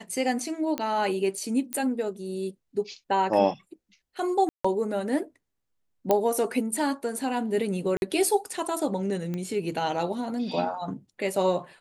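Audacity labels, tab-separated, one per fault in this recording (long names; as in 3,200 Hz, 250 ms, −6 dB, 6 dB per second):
0.780000	0.780000	click −14 dBFS
1.730000	1.730000	click −15 dBFS
4.490000	4.640000	drop-out 155 ms
6.110000	6.110000	click −9 dBFS
7.970000	8.020000	drop-out 51 ms
9.340000	9.340000	click −20 dBFS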